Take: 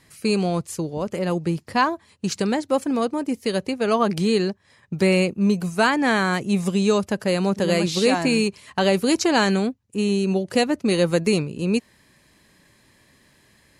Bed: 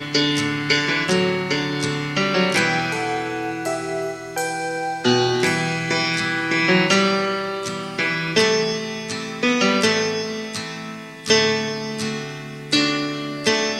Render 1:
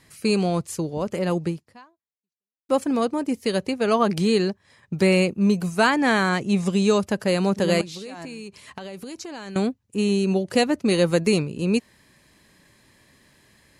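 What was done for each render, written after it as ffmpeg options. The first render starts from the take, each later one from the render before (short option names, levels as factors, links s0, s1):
-filter_complex "[0:a]asettb=1/sr,asplit=3[s0][s1][s2];[s0]atrim=end=6.294[s3];[s1]atrim=start=6.29:end=6.73,asetpts=PTS-STARTPTS,afade=t=in:d=0.004:c=qsin,afade=t=out:st=0.436:d=0.004:c=qsin,lowpass=8500[s4];[s2]atrim=start=6.726[s5];[s3][s4]acrossfade=d=0.004:c1=hsin:c2=qsin[s6];[s6][s5]acrossfade=d=0.004:c1=qsin:c2=hsin,asettb=1/sr,asplit=3[s7][s8][s9];[s7]atrim=end=7.814[s10];[s8]atrim=start=7.81:end=9.56,asetpts=PTS-STARTPTS,afade=t=in:d=0.004:c=qsin,afade=t=out:st=1.746:d=0.004:c=qsin,acompressor=threshold=0.0251:ratio=20:attack=3.2:release=140:knee=1:detection=peak[s11];[s9]atrim=start=9.556[s12];[s10][s11]acrossfade=d=0.004:c1=hsin:c2=qsin[s13];[s13][s12]acrossfade=d=0.004:c1=qsin:c2=hsin,asplit=2[s14][s15];[s14]atrim=end=2.69,asetpts=PTS-STARTPTS,afade=t=out:st=1.46:d=1.23:c=exp[s16];[s15]atrim=start=2.69,asetpts=PTS-STARTPTS,afade=t=in:d=0.004:c=hsin[s17];[s16][s17]concat=n=2:v=0:a=1"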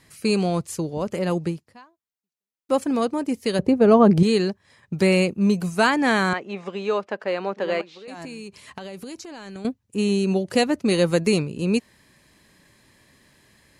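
-filter_complex "[0:a]asettb=1/sr,asplit=3[s0][s1][s2];[s0]atrim=end=3.594[s3];[s1]atrim=start=3.59:end=4.23,asetpts=PTS-STARTPTS,afade=t=in:d=0.004:c=qsin,afade=t=out:st=0.636:d=0.004:c=qsin,tiltshelf=f=1200:g=9.5[s4];[s2]atrim=start=4.226[s5];[s3][s4]acrossfade=d=0.004:c1=hsin:c2=qsin[s6];[s6][s5]acrossfade=d=0.004:c1=qsin:c2=hsin,asettb=1/sr,asplit=3[s7][s8][s9];[s7]atrim=end=6.334[s10];[s8]atrim=start=6.33:end=8.08,asetpts=PTS-STARTPTS,afade=t=in:d=0.004:c=qsin,afade=t=out:st=1.746:d=0.004:c=qsin,highpass=450,lowpass=2400[s11];[s9]atrim=start=8.076[s12];[s10][s11]acrossfade=d=0.004:c1=hsin:c2=qsin[s13];[s13][s12]acrossfade=d=0.004:c1=qsin:c2=hsin,asettb=1/sr,asplit=3[s14][s15][s16];[s14]atrim=end=9.184[s17];[s15]atrim=start=9.18:end=9.65,asetpts=PTS-STARTPTS,afade=t=in:d=0.004:c=qsin,afade=t=out:st=0.466:d=0.004:c=qsin,acompressor=threshold=0.02:ratio=10:attack=3.2:release=140:knee=1:detection=peak[s18];[s16]atrim=start=9.646[s19];[s17][s18]acrossfade=d=0.004:c1=hsin:c2=qsin[s20];[s20][s19]acrossfade=d=0.004:c1=qsin:c2=hsin"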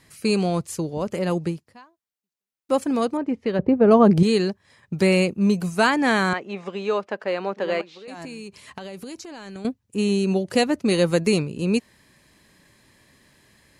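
-filter_complex "[0:a]asettb=1/sr,asplit=3[s0][s1][s2];[s0]atrim=end=3.174[s3];[s1]atrim=start=3.17:end=3.91,asetpts=PTS-STARTPTS,afade=t=in:d=0.004:c=qsin,afade=t=out:st=0.736:d=0.004:c=qsin,lowpass=2100[s4];[s2]atrim=start=3.906[s5];[s3][s4]acrossfade=d=0.004:c1=hsin:c2=qsin[s6];[s6][s5]acrossfade=d=0.004:c1=qsin:c2=hsin"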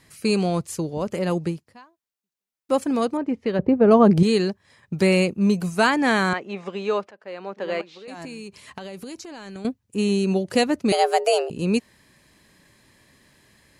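-filter_complex "[0:a]asettb=1/sr,asplit=3[s0][s1][s2];[s0]atrim=end=10.924[s3];[s1]atrim=start=10.92:end=11.5,asetpts=PTS-STARTPTS,afade=t=in:d=0.004:c=qsin,afade=t=out:st=0.576:d=0.004:c=qsin,afreqshift=250[s4];[s2]atrim=start=11.496[s5];[s3][s4]acrossfade=d=0.004:c1=hsin:c2=qsin[s6];[s6][s5]acrossfade=d=0.004:c1=qsin:c2=hsin,asplit=2[s7][s8];[s7]atrim=end=7.11,asetpts=PTS-STARTPTS,afade=t=out:st=7.106:d=0.004:c=hsin:silence=0.0794328[s9];[s8]atrim=start=7.11,asetpts=PTS-STARTPTS,afade=t=in:d=0.84:silence=0.0794328[s10];[s9][s10]concat=n=2:v=0:a=1"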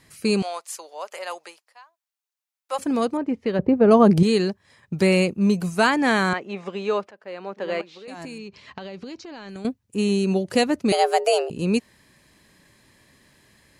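-filter_complex "[0:a]asettb=1/sr,asplit=3[s0][s1][s2];[s0]atrim=end=0.424[s3];[s1]atrim=start=0.42:end=2.79,asetpts=PTS-STARTPTS,afade=t=in:d=0.004:c=qsin,afade=t=out:st=2.366:d=0.004:c=qsin,highpass=f=670:w=0.5412,highpass=f=670:w=1.3066[s4];[s2]atrim=start=2.786[s5];[s3][s4]acrossfade=d=0.004:c1=hsin:c2=qsin[s6];[s6][s5]acrossfade=d=0.004:c1=qsin:c2=hsin,asettb=1/sr,asplit=3[s7][s8][s9];[s7]atrim=end=3.734[s10];[s8]atrim=start=3.73:end=4.19,asetpts=PTS-STARTPTS,afade=t=in:d=0.004:c=qsin,afade=t=out:st=0.456:d=0.004:c=qsin,highshelf=f=5200:g=8[s11];[s9]atrim=start=4.186[s12];[s10][s11]acrossfade=d=0.004:c1=hsin:c2=qsin[s13];[s13][s12]acrossfade=d=0.004:c1=qsin:c2=hsin,asettb=1/sr,asplit=3[s14][s15][s16];[s14]atrim=end=8.384[s17];[s15]atrim=start=8.38:end=9.49,asetpts=PTS-STARTPTS,afade=t=in:d=0.004:c=qsin,afade=t=out:st=1.106:d=0.004:c=qsin,lowpass=f=5300:w=0.5412,lowpass=f=5300:w=1.3066[s18];[s16]atrim=start=9.486[s19];[s17][s18]acrossfade=d=0.004:c1=hsin:c2=qsin[s20];[s20][s19]acrossfade=d=0.004:c1=qsin:c2=hsin"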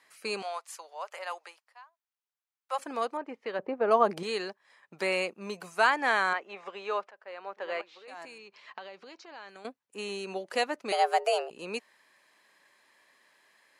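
-af "highpass=810,highshelf=f=2700:g=-11.5"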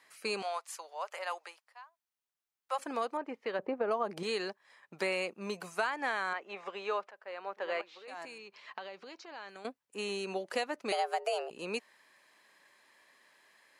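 -af "acompressor=threshold=0.0355:ratio=6"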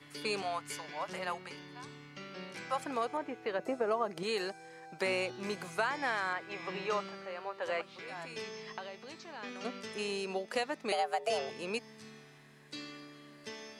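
-filter_complex "[1:a]volume=0.0447[s0];[0:a][s0]amix=inputs=2:normalize=0"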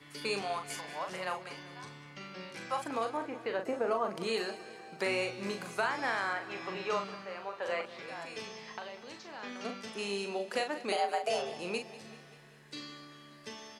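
-filter_complex "[0:a]asplit=2[s0][s1];[s1]adelay=40,volume=0.473[s2];[s0][s2]amix=inputs=2:normalize=0,aecho=1:1:194|388|582|776|970|1164:0.15|0.0898|0.0539|0.0323|0.0194|0.0116"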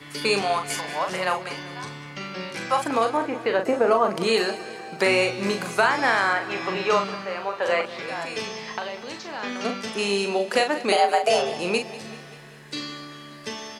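-af "volume=3.98"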